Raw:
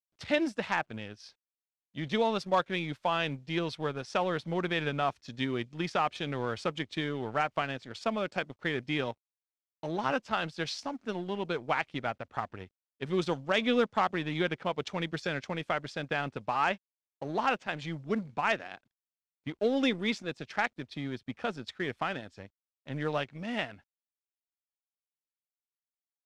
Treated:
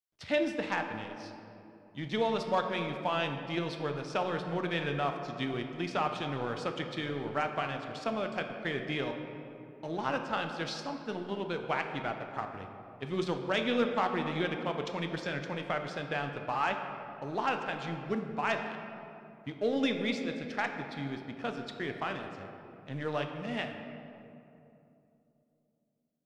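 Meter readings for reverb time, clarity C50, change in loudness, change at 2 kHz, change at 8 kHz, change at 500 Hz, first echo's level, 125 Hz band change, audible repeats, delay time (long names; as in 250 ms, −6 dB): 2.9 s, 6.0 dB, −1.5 dB, −2.0 dB, −2.5 dB, −1.0 dB, no echo audible, −1.0 dB, no echo audible, no echo audible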